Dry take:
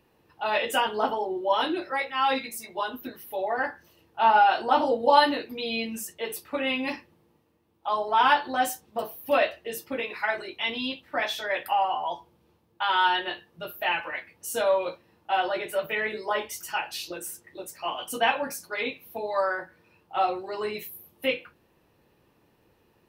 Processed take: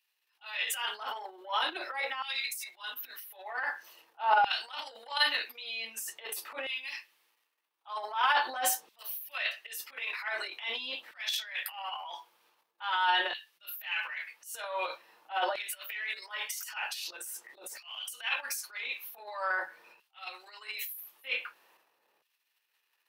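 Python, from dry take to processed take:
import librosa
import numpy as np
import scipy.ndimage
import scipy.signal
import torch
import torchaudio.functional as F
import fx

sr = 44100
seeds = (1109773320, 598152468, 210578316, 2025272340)

y = fx.transient(x, sr, attack_db=-12, sustain_db=11)
y = fx.filter_lfo_highpass(y, sr, shape='saw_down', hz=0.45, low_hz=640.0, high_hz=2900.0, q=0.87)
y = F.gain(torch.from_numpy(y), -4.5).numpy()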